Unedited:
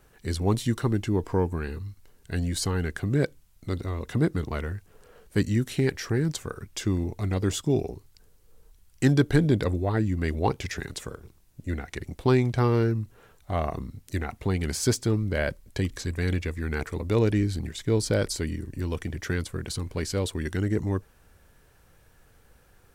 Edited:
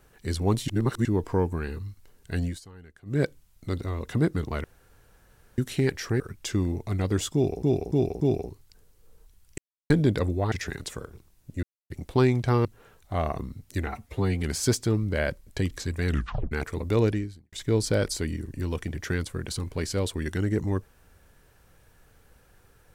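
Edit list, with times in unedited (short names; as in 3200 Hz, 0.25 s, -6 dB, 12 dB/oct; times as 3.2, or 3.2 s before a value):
0.68–1.05 reverse
2.45–3.2 dip -20.5 dB, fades 0.15 s
4.64–5.58 room tone
6.2–6.52 cut
7.66–7.95 loop, 4 plays
9.03–9.35 mute
9.97–10.62 cut
11.73–12 mute
12.75–13.03 cut
14.25–14.62 stretch 1.5×
16.27 tape stop 0.44 s
17.26–17.72 fade out quadratic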